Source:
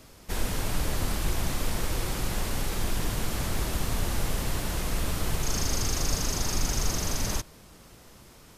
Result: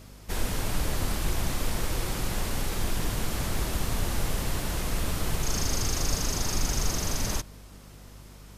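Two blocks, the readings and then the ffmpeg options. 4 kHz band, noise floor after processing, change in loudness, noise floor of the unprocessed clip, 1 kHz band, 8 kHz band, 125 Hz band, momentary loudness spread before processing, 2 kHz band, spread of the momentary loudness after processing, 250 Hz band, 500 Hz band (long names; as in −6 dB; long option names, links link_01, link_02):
0.0 dB, −48 dBFS, 0.0 dB, −52 dBFS, 0.0 dB, 0.0 dB, 0.0 dB, 3 LU, 0.0 dB, 9 LU, 0.0 dB, 0.0 dB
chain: -af "aeval=exprs='val(0)+0.00447*(sin(2*PI*50*n/s)+sin(2*PI*2*50*n/s)/2+sin(2*PI*3*50*n/s)/3+sin(2*PI*4*50*n/s)/4+sin(2*PI*5*50*n/s)/5)':channel_layout=same"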